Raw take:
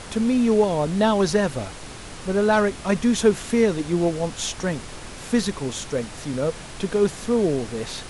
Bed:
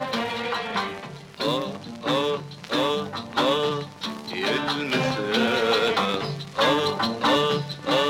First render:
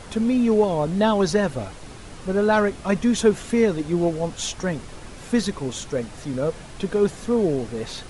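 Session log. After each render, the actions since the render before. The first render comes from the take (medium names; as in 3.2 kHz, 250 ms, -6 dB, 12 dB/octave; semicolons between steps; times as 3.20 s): noise reduction 6 dB, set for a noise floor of -38 dBFS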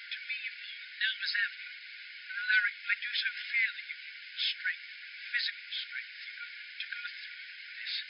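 peaking EQ 2.2 kHz +10 dB 0.22 oct; FFT band-pass 1.4–5.2 kHz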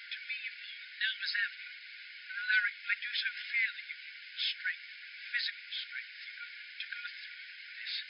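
trim -2 dB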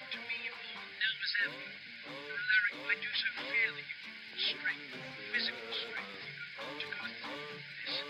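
add bed -25 dB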